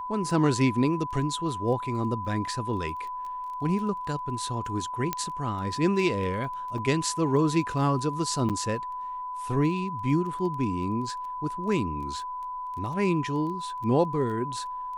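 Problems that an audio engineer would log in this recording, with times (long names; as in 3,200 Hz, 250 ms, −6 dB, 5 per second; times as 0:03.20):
surface crackle 11 per second −36 dBFS
whistle 1,000 Hz −32 dBFS
0:05.13: click −12 dBFS
0:06.78: drop-out 3.3 ms
0:08.49–0:08.50: drop-out 7.8 ms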